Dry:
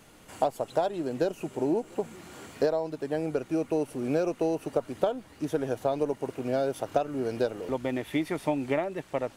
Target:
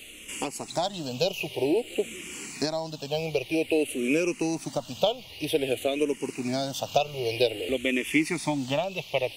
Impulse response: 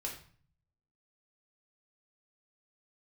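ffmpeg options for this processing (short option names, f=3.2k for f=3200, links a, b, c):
-filter_complex "[0:a]highshelf=f=2k:t=q:w=3:g=9.5,asplit=2[a][b];[b]afreqshift=-0.52[c];[a][c]amix=inputs=2:normalize=1,volume=4.5dB"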